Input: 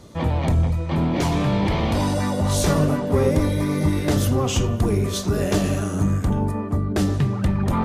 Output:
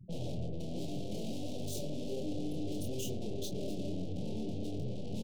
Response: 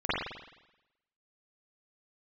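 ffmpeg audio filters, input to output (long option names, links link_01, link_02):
-af "afftfilt=real='re*gte(hypot(re,im),0.0562)':imag='im*gte(hypot(re,im),0.0562)':win_size=1024:overlap=0.75,highpass=frequency=120:width=0.5412,highpass=frequency=120:width=1.3066,acompressor=threshold=-21dB:ratio=20,aeval=exprs='(tanh(158*val(0)+0.65)-tanh(0.65))/158':channel_layout=same,atempo=1.5,asuperstop=centerf=1400:order=8:qfactor=0.6,aecho=1:1:23|33:0.501|0.422,volume=5.5dB"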